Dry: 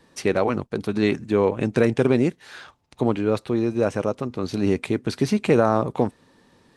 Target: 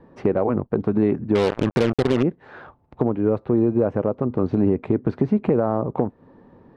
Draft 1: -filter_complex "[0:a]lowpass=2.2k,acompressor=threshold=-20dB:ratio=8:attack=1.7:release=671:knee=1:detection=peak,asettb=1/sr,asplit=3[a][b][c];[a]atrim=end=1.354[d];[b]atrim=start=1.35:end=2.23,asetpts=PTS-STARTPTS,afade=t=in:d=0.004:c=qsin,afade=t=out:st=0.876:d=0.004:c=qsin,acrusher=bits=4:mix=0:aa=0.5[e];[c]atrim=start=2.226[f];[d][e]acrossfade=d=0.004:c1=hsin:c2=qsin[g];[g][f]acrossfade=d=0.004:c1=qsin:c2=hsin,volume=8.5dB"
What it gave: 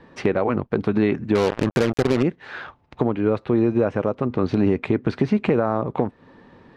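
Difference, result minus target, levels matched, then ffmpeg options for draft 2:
2000 Hz band +5.5 dB
-filter_complex "[0:a]lowpass=920,acompressor=threshold=-20dB:ratio=8:attack=1.7:release=671:knee=1:detection=peak,asettb=1/sr,asplit=3[a][b][c];[a]atrim=end=1.354[d];[b]atrim=start=1.35:end=2.23,asetpts=PTS-STARTPTS,afade=t=in:d=0.004:c=qsin,afade=t=out:st=0.876:d=0.004:c=qsin,acrusher=bits=4:mix=0:aa=0.5[e];[c]atrim=start=2.226[f];[d][e]acrossfade=d=0.004:c1=hsin:c2=qsin[g];[g][f]acrossfade=d=0.004:c1=qsin:c2=hsin,volume=8.5dB"

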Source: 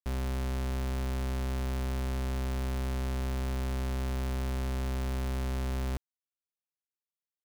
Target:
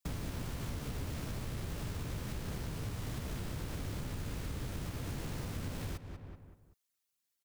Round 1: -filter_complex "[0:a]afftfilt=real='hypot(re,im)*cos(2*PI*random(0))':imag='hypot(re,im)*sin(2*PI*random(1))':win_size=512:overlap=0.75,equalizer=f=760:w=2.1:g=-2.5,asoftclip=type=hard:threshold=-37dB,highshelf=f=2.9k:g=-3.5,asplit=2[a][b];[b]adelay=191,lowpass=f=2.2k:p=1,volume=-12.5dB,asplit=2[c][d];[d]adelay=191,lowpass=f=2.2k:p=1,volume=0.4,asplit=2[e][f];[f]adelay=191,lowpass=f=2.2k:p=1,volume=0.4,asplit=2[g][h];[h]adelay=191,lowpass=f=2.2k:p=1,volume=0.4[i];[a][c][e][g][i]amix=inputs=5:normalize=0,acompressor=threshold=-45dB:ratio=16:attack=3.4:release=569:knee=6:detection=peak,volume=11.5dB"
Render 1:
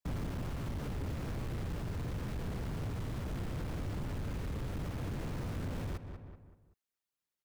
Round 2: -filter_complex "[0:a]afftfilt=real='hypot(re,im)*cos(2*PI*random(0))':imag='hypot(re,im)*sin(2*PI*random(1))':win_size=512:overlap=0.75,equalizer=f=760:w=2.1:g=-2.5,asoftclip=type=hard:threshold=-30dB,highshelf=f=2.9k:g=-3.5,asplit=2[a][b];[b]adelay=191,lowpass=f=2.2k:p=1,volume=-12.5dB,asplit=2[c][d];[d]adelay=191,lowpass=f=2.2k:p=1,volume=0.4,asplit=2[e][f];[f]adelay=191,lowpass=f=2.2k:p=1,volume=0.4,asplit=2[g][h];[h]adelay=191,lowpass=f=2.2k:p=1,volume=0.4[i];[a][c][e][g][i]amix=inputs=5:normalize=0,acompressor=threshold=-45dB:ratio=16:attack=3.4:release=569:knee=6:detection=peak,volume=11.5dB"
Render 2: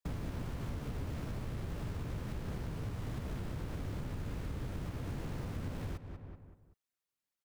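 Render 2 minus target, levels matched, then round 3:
8000 Hz band -8.5 dB
-filter_complex "[0:a]afftfilt=real='hypot(re,im)*cos(2*PI*random(0))':imag='hypot(re,im)*sin(2*PI*random(1))':win_size=512:overlap=0.75,equalizer=f=760:w=2.1:g=-2.5,asoftclip=type=hard:threshold=-30dB,highshelf=f=2.9k:g=7,asplit=2[a][b];[b]adelay=191,lowpass=f=2.2k:p=1,volume=-12.5dB,asplit=2[c][d];[d]adelay=191,lowpass=f=2.2k:p=1,volume=0.4,asplit=2[e][f];[f]adelay=191,lowpass=f=2.2k:p=1,volume=0.4,asplit=2[g][h];[h]adelay=191,lowpass=f=2.2k:p=1,volume=0.4[i];[a][c][e][g][i]amix=inputs=5:normalize=0,acompressor=threshold=-45dB:ratio=16:attack=3.4:release=569:knee=6:detection=peak,volume=11.5dB"

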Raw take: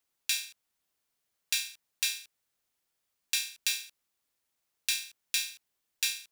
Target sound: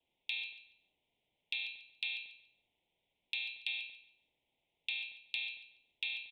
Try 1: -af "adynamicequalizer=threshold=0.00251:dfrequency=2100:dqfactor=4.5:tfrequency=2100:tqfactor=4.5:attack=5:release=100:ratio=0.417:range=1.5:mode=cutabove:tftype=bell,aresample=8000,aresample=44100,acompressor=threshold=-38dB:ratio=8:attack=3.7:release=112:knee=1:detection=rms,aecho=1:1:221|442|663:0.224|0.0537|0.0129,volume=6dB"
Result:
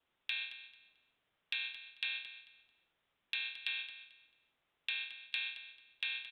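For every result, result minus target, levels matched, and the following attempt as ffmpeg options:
echo 79 ms late; 1000 Hz band +5.5 dB
-af "adynamicequalizer=threshold=0.00251:dfrequency=2100:dqfactor=4.5:tfrequency=2100:tqfactor=4.5:attack=5:release=100:ratio=0.417:range=1.5:mode=cutabove:tftype=bell,aresample=8000,aresample=44100,acompressor=threshold=-38dB:ratio=8:attack=3.7:release=112:knee=1:detection=rms,aecho=1:1:142|284|426:0.224|0.0537|0.0129,volume=6dB"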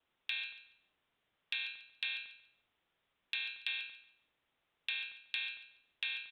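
1000 Hz band +5.0 dB
-af "adynamicequalizer=threshold=0.00251:dfrequency=2100:dqfactor=4.5:tfrequency=2100:tqfactor=4.5:attack=5:release=100:ratio=0.417:range=1.5:mode=cutabove:tftype=bell,aresample=8000,aresample=44100,acompressor=threshold=-38dB:ratio=8:attack=3.7:release=112:knee=1:detection=rms,asuperstop=centerf=1400:order=8:qfactor=1.2,aecho=1:1:142|284|426:0.224|0.0537|0.0129,volume=6dB"

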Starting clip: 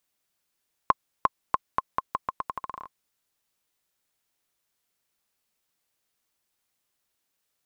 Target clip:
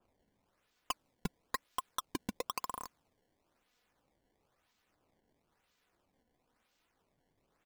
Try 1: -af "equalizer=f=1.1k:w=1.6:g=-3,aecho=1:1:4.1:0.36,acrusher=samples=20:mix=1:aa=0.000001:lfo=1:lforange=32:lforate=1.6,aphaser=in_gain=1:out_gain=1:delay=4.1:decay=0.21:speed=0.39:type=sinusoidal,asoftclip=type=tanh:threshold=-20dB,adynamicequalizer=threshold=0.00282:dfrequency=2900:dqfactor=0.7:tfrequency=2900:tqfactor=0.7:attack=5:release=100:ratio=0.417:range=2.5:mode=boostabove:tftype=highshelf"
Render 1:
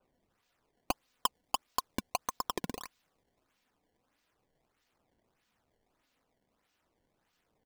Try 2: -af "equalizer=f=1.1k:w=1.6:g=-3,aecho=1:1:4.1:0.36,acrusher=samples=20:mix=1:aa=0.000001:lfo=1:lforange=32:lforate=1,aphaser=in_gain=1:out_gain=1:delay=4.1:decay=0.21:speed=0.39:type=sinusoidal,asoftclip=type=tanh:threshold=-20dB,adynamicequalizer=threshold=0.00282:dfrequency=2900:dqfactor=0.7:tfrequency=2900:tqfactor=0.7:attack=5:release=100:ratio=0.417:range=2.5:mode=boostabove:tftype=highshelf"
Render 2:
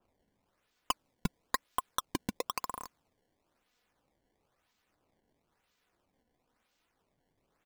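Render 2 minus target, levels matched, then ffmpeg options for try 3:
soft clip: distortion -5 dB
-af "equalizer=f=1.1k:w=1.6:g=-3,aecho=1:1:4.1:0.36,acrusher=samples=20:mix=1:aa=0.000001:lfo=1:lforange=32:lforate=1,aphaser=in_gain=1:out_gain=1:delay=4.1:decay=0.21:speed=0.39:type=sinusoidal,asoftclip=type=tanh:threshold=-27.5dB,adynamicequalizer=threshold=0.00282:dfrequency=2900:dqfactor=0.7:tfrequency=2900:tqfactor=0.7:attack=5:release=100:ratio=0.417:range=2.5:mode=boostabove:tftype=highshelf"

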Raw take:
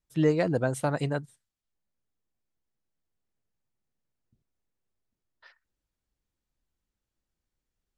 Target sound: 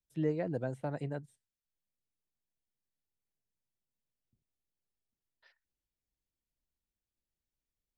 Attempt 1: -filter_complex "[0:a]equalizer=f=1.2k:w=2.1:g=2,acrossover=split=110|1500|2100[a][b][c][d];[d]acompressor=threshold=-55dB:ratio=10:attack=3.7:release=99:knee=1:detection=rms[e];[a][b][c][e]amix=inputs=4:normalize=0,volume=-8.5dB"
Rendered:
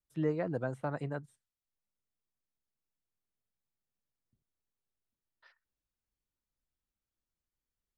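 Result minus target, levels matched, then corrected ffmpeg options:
1000 Hz band +2.5 dB
-filter_complex "[0:a]equalizer=f=1.2k:w=2.1:g=-8.5,acrossover=split=110|1500|2100[a][b][c][d];[d]acompressor=threshold=-55dB:ratio=10:attack=3.7:release=99:knee=1:detection=rms[e];[a][b][c][e]amix=inputs=4:normalize=0,volume=-8.5dB"

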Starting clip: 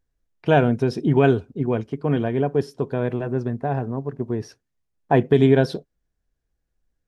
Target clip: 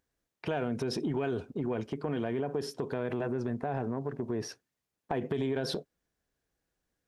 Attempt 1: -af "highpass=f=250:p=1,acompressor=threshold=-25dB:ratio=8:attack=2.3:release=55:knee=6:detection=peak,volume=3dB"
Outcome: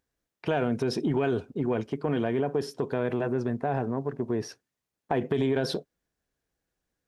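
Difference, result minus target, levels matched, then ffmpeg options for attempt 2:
compressor: peak gain reduction -5.5 dB
-af "highpass=f=250:p=1,acompressor=threshold=-31.5dB:ratio=8:attack=2.3:release=55:knee=6:detection=peak,volume=3dB"

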